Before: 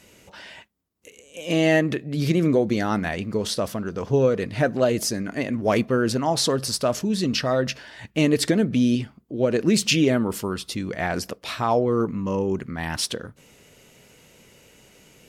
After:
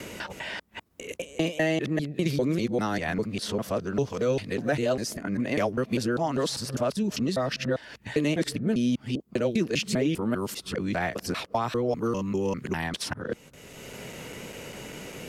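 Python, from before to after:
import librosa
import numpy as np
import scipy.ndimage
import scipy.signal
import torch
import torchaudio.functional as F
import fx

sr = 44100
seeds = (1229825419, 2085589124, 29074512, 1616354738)

y = fx.local_reverse(x, sr, ms=199.0)
y = fx.band_squash(y, sr, depth_pct=70)
y = y * 10.0 ** (-5.0 / 20.0)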